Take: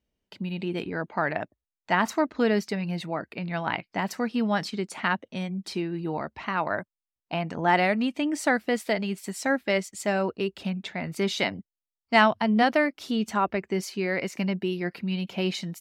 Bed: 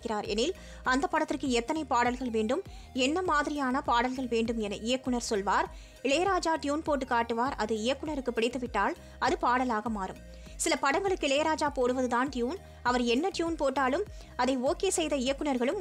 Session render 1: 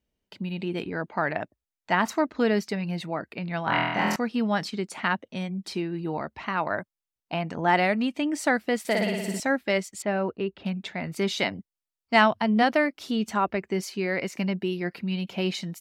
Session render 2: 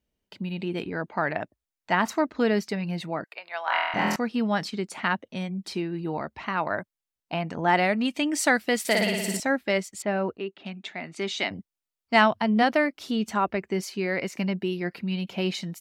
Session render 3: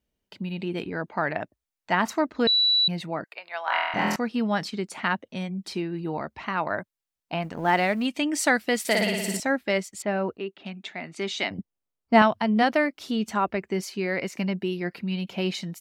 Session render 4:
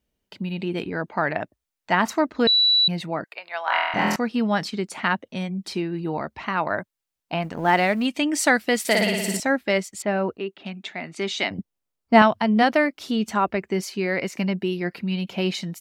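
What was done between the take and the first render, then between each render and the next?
0:03.64–0:04.16: flutter between parallel walls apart 4.1 metres, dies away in 1.2 s; 0:08.79–0:09.40: flutter between parallel walls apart 9.9 metres, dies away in 1.2 s; 0:10.02–0:10.66: high-frequency loss of the air 310 metres
0:03.24–0:03.94: high-pass filter 610 Hz 24 dB per octave; 0:08.05–0:09.37: high-shelf EQ 2,100 Hz +8.5 dB; 0:10.37–0:11.51: loudspeaker in its box 290–8,100 Hz, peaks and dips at 500 Hz −9 dB, 970 Hz −4 dB, 1,500 Hz −3 dB, 5,000 Hz −4 dB
0:02.47–0:02.88: beep over 3,940 Hz −17.5 dBFS; 0:07.42–0:08.06: mu-law and A-law mismatch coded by A; 0:11.58–0:12.22: tilt shelving filter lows +7.5 dB, about 1,200 Hz
level +3 dB

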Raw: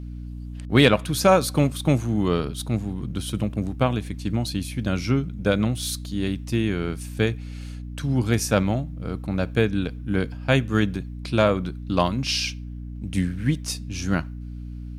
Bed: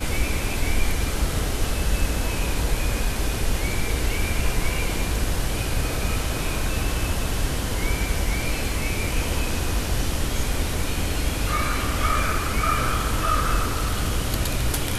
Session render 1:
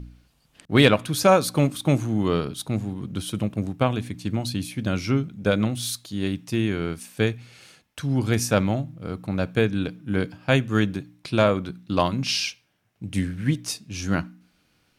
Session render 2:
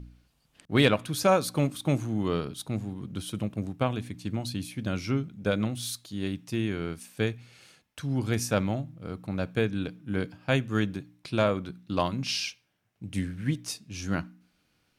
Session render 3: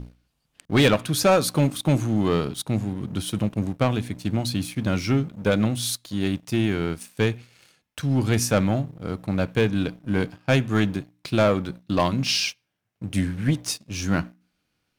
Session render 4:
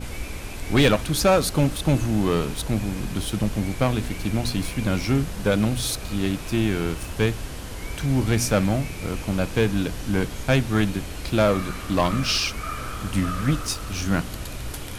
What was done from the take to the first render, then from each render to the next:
hum removal 60 Hz, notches 5
level −5.5 dB
leveller curve on the samples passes 2
mix in bed −9 dB

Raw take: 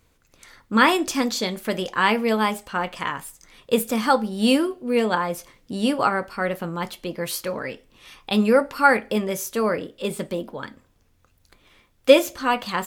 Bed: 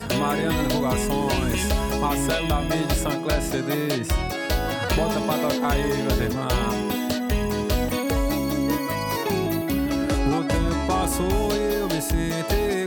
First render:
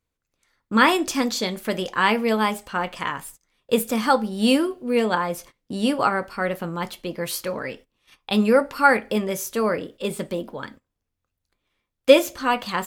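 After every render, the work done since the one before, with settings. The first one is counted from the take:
noise gate −43 dBFS, range −19 dB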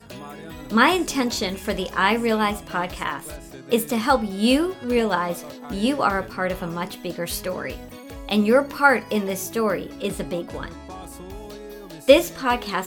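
mix in bed −15 dB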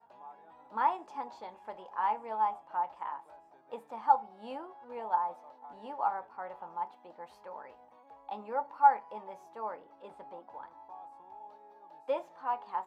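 resonant band-pass 860 Hz, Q 9.7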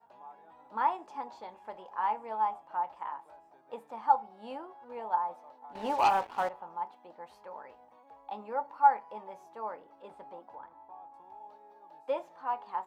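0:05.75–0:06.49: leveller curve on the samples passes 3
0:10.55–0:11.14: high-frequency loss of the air 320 metres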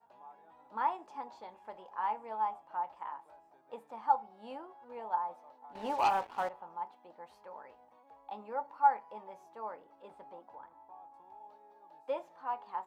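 level −3.5 dB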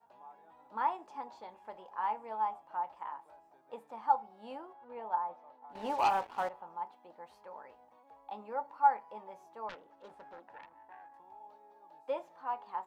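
0:04.73–0:05.70: low-pass filter 3,400 Hz
0:09.69–0:11.19: phase distortion by the signal itself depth 0.52 ms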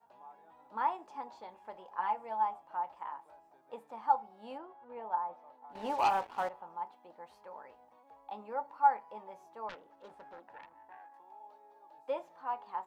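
0:01.98–0:02.43: comb filter 5.8 ms, depth 55%
0:04.58–0:05.33: high-frequency loss of the air 130 metres
0:10.97–0:11.98: high-pass filter 280 Hz

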